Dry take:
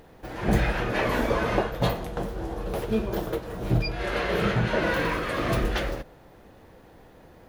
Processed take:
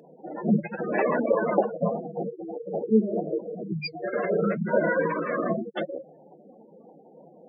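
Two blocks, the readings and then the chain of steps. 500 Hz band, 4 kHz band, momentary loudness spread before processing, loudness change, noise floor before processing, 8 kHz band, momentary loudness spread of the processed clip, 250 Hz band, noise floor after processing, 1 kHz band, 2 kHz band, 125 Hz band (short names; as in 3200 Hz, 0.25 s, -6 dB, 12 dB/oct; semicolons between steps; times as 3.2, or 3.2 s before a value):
+2.5 dB, -10.5 dB, 8 LU, 0.0 dB, -52 dBFS, under -35 dB, 11 LU, +2.0 dB, -53 dBFS, -1.5 dB, -4.0 dB, -6.5 dB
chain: spectral gate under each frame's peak -10 dB strong; rippled Chebyshev high-pass 150 Hz, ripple 3 dB; flange 0.82 Hz, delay 1.1 ms, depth 4.1 ms, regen +76%; gain +8.5 dB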